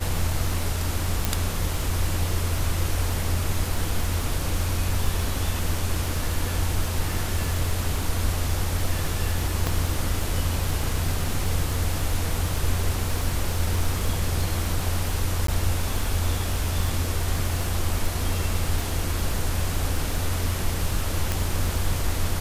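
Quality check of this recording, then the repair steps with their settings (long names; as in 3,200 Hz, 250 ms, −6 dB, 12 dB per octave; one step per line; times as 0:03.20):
surface crackle 46 per second −28 dBFS
0:01.25: click
0:09.67: click
0:15.47–0:15.48: drop-out 13 ms
0:21.32: click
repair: click removal
repair the gap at 0:15.47, 13 ms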